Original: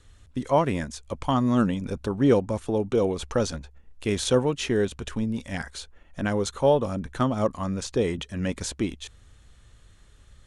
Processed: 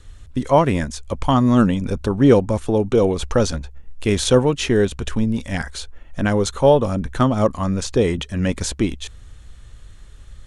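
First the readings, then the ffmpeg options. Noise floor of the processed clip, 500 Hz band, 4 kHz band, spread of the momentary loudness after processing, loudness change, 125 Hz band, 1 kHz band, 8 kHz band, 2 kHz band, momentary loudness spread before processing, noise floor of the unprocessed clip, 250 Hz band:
-42 dBFS, +6.5 dB, +6.5 dB, 12 LU, +7.0 dB, +8.5 dB, +6.5 dB, +6.5 dB, +6.5 dB, 12 LU, -55 dBFS, +7.0 dB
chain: -af "lowshelf=f=60:g=9.5,volume=2.11"

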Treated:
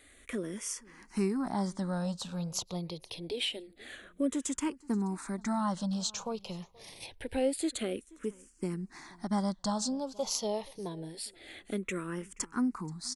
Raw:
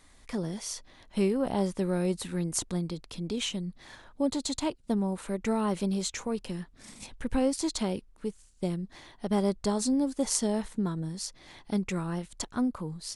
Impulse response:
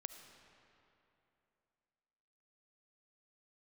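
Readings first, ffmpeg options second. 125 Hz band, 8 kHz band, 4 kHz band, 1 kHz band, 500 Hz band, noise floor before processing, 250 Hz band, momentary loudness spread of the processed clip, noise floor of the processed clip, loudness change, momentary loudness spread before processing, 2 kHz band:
-5.0 dB, -3.0 dB, -1.0 dB, -1.0 dB, -4.5 dB, -58 dBFS, -4.0 dB, 11 LU, -61 dBFS, -3.5 dB, 11 LU, -1.0 dB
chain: -filter_complex "[0:a]lowshelf=f=150:g=-10,asplit=2[s0][s1];[s1]acompressor=threshold=0.00631:ratio=6,volume=0.794[s2];[s0][s2]amix=inputs=2:normalize=0,aecho=1:1:479|958:0.0631|0.0114,asplit=2[s3][s4];[s4]afreqshift=-0.26[s5];[s3][s5]amix=inputs=2:normalize=1"

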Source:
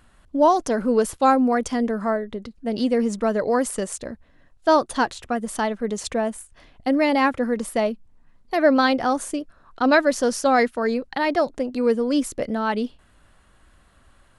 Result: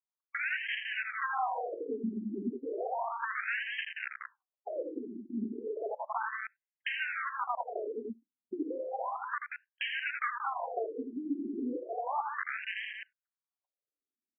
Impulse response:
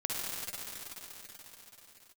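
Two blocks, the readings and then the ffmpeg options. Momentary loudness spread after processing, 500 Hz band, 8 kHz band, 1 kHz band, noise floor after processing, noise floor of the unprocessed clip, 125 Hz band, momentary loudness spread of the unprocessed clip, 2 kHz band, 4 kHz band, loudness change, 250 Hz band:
8 LU, -18.0 dB, under -40 dB, -13.0 dB, under -85 dBFS, -57 dBFS, no reading, 12 LU, -7.0 dB, -10.0 dB, -14.0 dB, -17.5 dB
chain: -filter_complex "[0:a]aemphasis=mode=reproduction:type=riaa,acrossover=split=110|930[s0][s1][s2];[s0]acompressor=threshold=0.0126:ratio=4[s3];[s1]acompressor=threshold=0.0708:ratio=4[s4];[s2]acompressor=threshold=0.0178:ratio=4[s5];[s3][s4][s5]amix=inputs=3:normalize=0,equalizer=f=460:w=0.59:g=7.5,bandreject=f=171.1:t=h:w=4,bandreject=f=342.2:t=h:w=4,bandreject=f=513.3:t=h:w=4,bandreject=f=684.4:t=h:w=4,bandreject=f=855.5:t=h:w=4,bandreject=f=1026.6:t=h:w=4,bandreject=f=1197.7:t=h:w=4,bandreject=f=1368.8:t=h:w=4,bandreject=f=1539.9:t=h:w=4,bandreject=f=1711:t=h:w=4,bandreject=f=1882.1:t=h:w=4,bandreject=f=2053.2:t=h:w=4,bandreject=f=2224.3:t=h:w=4,bandreject=f=2395.4:t=h:w=4,bandreject=f=2566.5:t=h:w=4,bandreject=f=2737.6:t=h:w=4,bandreject=f=2908.7:t=h:w=4,bandreject=f=3079.8:t=h:w=4,bandreject=f=3250.9:t=h:w=4,bandreject=f=3422:t=h:w=4,bandreject=f=3593.1:t=h:w=4,bandreject=f=3764.2:t=h:w=4,bandreject=f=3935.3:t=h:w=4,bandreject=f=4106.4:t=h:w=4,bandreject=f=4277.5:t=h:w=4,bandreject=f=4448.6:t=h:w=4,bandreject=f=4619.7:t=h:w=4,bandreject=f=4790.8:t=h:w=4,bandreject=f=4961.9:t=h:w=4,bandreject=f=5133:t=h:w=4,bandreject=f=5304.1:t=h:w=4,bandreject=f=5475.2:t=h:w=4,bandreject=f=5646.3:t=h:w=4,bandreject=f=5817.4:t=h:w=4,bandreject=f=5988.5:t=h:w=4,bandreject=f=6159.6:t=h:w=4,aresample=16000,aeval=exprs='(mod(5.31*val(0)+1,2)-1)/5.31':c=same,aresample=44100,aecho=1:1:81.63|180.8:0.447|0.398,agate=range=0.00708:threshold=0.0282:ratio=16:detection=peak,acompressor=threshold=0.0891:ratio=4,asplit=2[s6][s7];[1:a]atrim=start_sample=2205,atrim=end_sample=4410,lowpass=1300[s8];[s7][s8]afir=irnorm=-1:irlink=0,volume=0.0631[s9];[s6][s9]amix=inputs=2:normalize=0,afftfilt=real='re*between(b*sr/1024,270*pow(2300/270,0.5+0.5*sin(2*PI*0.33*pts/sr))/1.41,270*pow(2300/270,0.5+0.5*sin(2*PI*0.33*pts/sr))*1.41)':imag='im*between(b*sr/1024,270*pow(2300/270,0.5+0.5*sin(2*PI*0.33*pts/sr))/1.41,270*pow(2300/270,0.5+0.5*sin(2*PI*0.33*pts/sr))*1.41)':win_size=1024:overlap=0.75,volume=0.562"

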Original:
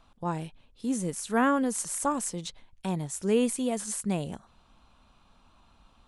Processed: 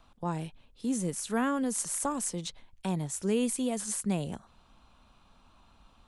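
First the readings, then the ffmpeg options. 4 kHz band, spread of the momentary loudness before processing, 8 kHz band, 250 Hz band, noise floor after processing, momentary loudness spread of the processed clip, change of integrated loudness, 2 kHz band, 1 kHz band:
-0.5 dB, 14 LU, 0.0 dB, -2.0 dB, -63 dBFS, 10 LU, -2.5 dB, -5.0 dB, -5.0 dB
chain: -filter_complex "[0:a]acrossover=split=220|3000[s0][s1][s2];[s1]acompressor=threshold=0.0251:ratio=2[s3];[s0][s3][s2]amix=inputs=3:normalize=0"

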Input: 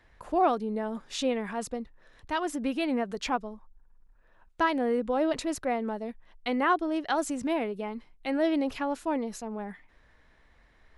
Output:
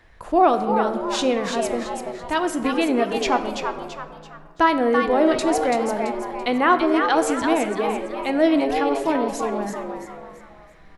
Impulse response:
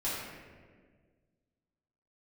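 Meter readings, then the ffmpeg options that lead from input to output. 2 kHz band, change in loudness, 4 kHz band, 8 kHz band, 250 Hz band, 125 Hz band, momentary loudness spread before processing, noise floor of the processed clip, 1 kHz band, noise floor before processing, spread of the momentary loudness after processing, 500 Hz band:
+9.0 dB, +9.0 dB, +9.0 dB, +8.5 dB, +8.0 dB, no reading, 12 LU, -46 dBFS, +9.5 dB, -62 dBFS, 12 LU, +10.0 dB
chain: -filter_complex "[0:a]asplit=5[s0][s1][s2][s3][s4];[s1]adelay=335,afreqshift=140,volume=0.501[s5];[s2]adelay=670,afreqshift=280,volume=0.186[s6];[s3]adelay=1005,afreqshift=420,volume=0.0684[s7];[s4]adelay=1340,afreqshift=560,volume=0.0254[s8];[s0][s5][s6][s7][s8]amix=inputs=5:normalize=0,asplit=2[s9][s10];[1:a]atrim=start_sample=2205[s11];[s10][s11]afir=irnorm=-1:irlink=0,volume=0.2[s12];[s9][s12]amix=inputs=2:normalize=0,volume=2.11"

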